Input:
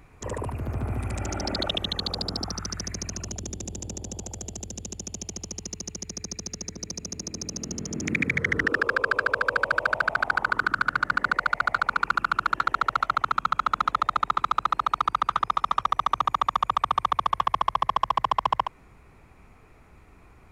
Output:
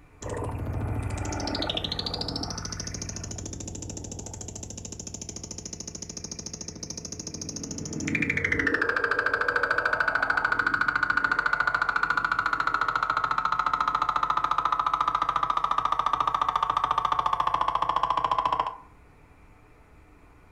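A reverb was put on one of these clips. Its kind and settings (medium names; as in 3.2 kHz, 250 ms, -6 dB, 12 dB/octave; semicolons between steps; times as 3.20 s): FDN reverb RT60 0.46 s, low-frequency decay 0.75×, high-frequency decay 0.45×, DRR 4 dB; trim -2 dB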